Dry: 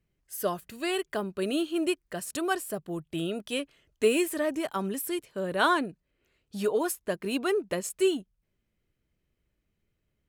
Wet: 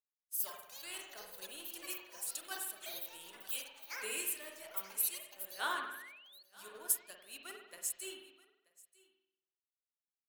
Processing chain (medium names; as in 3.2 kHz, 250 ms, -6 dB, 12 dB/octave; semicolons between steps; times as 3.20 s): differentiator; ever faster or slower copies 167 ms, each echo +7 st, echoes 2; in parallel at -8 dB: bit crusher 7-bit; on the sum: spring tank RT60 1.2 s, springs 47 ms, chirp 40 ms, DRR 1.5 dB; painted sound rise, 5.59–6.43 s, 740–4500 Hz -44 dBFS; on a send: delay 933 ms -13.5 dB; on the sum: three bands expanded up and down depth 70%; trim -7.5 dB